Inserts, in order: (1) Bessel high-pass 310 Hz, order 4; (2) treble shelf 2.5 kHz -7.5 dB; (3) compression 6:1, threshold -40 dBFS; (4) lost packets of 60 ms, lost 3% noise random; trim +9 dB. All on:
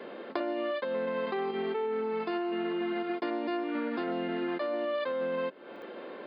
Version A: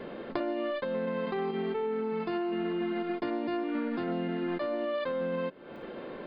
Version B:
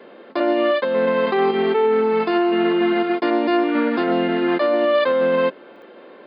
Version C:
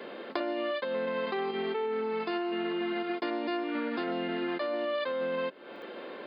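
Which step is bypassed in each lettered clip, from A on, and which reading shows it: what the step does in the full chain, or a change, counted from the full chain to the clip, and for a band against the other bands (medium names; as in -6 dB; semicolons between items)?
1, 125 Hz band +9.0 dB; 3, mean gain reduction 11.5 dB; 2, 4 kHz band +4.0 dB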